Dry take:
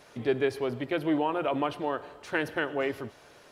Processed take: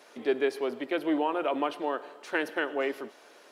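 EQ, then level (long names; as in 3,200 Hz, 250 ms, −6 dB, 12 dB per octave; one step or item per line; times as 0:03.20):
high-pass filter 250 Hz 24 dB per octave
0.0 dB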